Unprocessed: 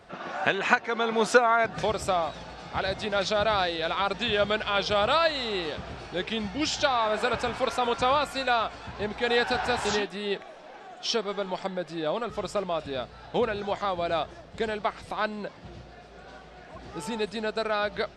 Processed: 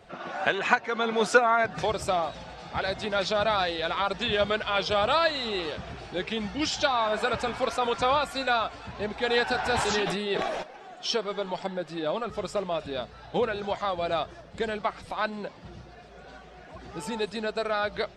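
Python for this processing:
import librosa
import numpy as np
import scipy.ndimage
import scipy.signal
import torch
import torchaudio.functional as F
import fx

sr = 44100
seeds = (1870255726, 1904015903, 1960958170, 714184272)

y = fx.spec_quant(x, sr, step_db=15)
y = fx.sustainer(y, sr, db_per_s=25.0, at=(9.65, 10.62), fade=0.02)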